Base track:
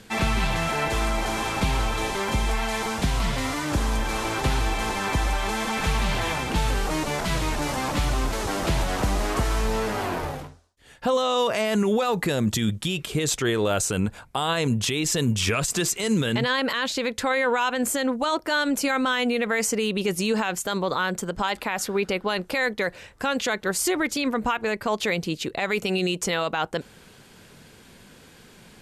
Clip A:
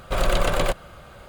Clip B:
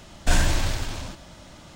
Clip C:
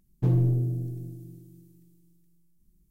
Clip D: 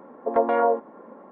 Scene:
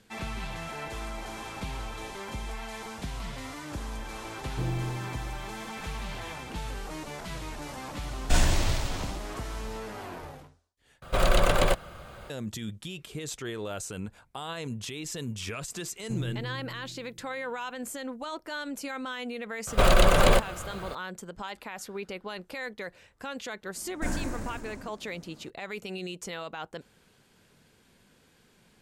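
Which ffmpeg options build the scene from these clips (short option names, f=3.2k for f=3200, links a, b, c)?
-filter_complex "[3:a]asplit=2[a][b];[2:a]asplit=2[c][d];[1:a]asplit=2[e][f];[0:a]volume=-12.5dB[g];[a]lowshelf=f=320:g=-9.5[h];[c]bandreject=f=1.6k:w=11[i];[f]alimiter=level_in=13.5dB:limit=-1dB:release=50:level=0:latency=1[j];[d]firequalizer=gain_entry='entry(110,0);entry(230,12);entry(370,9);entry(720,3);entry(1100,3);entry(1700,2);entry(3300,-13);entry(7100,1);entry(10000,3);entry(14000,0)':delay=0.05:min_phase=1[k];[g]asplit=2[l][m];[l]atrim=end=11.024[n];[e]atrim=end=1.28,asetpts=PTS-STARTPTS,volume=-1dB[o];[m]atrim=start=12.296[p];[h]atrim=end=2.9,asetpts=PTS-STARTPTS,volume=-1.5dB,afade=t=in:d=0.004:c=hsin,afade=t=out:st=2.896:d=0.004:c=hsin,adelay=4350[q];[i]atrim=end=1.75,asetpts=PTS-STARTPTS,volume=-2.5dB,afade=t=in:d=0.004:c=hsin,afade=t=out:st=1.746:d=0.004:c=hsin,adelay=8030[r];[b]atrim=end=2.9,asetpts=PTS-STARTPTS,volume=-11.5dB,afade=t=in:d=0.004:c=hsin,afade=t=out:st=2.896:d=0.004:c=hsin,adelay=15870[s];[j]atrim=end=1.28,asetpts=PTS-STARTPTS,volume=-8.5dB,afade=t=in:d=0.004:c=hsin,afade=t=out:st=1.276:d=0.004:c=hsin,adelay=19670[t];[k]atrim=end=1.75,asetpts=PTS-STARTPTS,volume=-13.5dB,afade=t=in:d=0.004:c=hsin,afade=t=out:st=1.746:d=0.004:c=hsin,adelay=23750[u];[n][o]acrossfade=d=0.004:c1=hsin:c2=hsin[v];[v][p]acrossfade=d=0.004:c1=hsin:c2=hsin[w];[w][q][r][s][t][u]amix=inputs=6:normalize=0"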